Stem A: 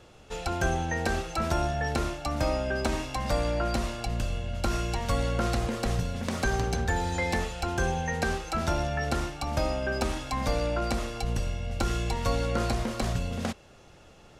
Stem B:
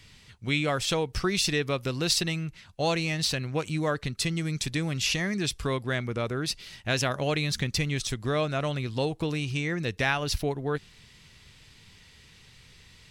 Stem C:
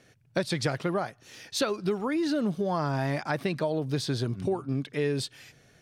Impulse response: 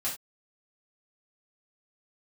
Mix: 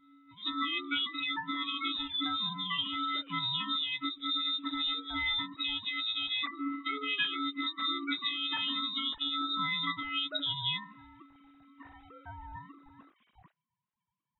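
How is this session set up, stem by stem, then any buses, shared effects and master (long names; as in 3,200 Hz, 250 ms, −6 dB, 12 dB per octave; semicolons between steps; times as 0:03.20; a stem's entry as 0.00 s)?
−11.0 dB, 0.00 s, no bus, no send, three sine waves on the formant tracks; ring modulation 420 Hz
+2.0 dB, 0.00 s, bus A, no send, every partial snapped to a pitch grid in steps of 6 semitones; compressor whose output falls as the input rises −27 dBFS, ratio −1; multiband upward and downward expander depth 70%
−2.5 dB, 0.00 s, bus A, no send, volume swells 145 ms; micro pitch shift up and down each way 51 cents
bus A: 0.0 dB, voice inversion scrambler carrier 3,800 Hz; downward compressor 6 to 1, threshold −31 dBFS, peak gain reduction 12.5 dB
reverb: not used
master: every bin expanded away from the loudest bin 1.5 to 1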